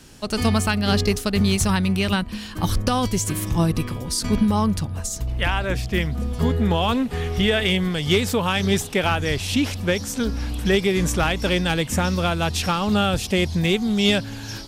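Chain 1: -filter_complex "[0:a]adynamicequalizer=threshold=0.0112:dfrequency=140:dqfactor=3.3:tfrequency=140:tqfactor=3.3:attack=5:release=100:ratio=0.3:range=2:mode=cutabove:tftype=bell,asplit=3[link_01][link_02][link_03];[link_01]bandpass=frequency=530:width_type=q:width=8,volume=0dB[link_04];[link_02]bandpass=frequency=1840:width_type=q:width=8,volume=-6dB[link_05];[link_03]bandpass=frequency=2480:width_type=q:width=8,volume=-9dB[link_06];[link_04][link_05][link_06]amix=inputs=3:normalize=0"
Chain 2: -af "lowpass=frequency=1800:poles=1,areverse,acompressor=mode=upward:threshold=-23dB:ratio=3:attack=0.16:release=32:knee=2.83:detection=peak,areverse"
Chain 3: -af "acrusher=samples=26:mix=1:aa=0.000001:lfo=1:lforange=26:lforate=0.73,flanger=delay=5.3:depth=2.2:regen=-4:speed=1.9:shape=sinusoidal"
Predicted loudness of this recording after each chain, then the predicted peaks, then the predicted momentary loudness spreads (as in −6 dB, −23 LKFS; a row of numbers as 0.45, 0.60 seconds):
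−35.0, −23.0, −25.5 LKFS; −15.0, −8.5, −8.5 dBFS; 12, 6, 6 LU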